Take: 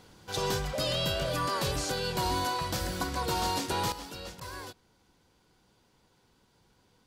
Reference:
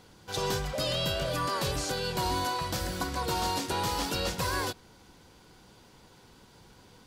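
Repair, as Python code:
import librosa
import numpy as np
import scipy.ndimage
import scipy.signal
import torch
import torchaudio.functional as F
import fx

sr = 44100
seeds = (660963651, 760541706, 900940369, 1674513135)

y = fx.fix_interpolate(x, sr, at_s=(4.4,), length_ms=10.0)
y = fx.gain(y, sr, db=fx.steps((0.0, 0.0), (3.92, 11.0)))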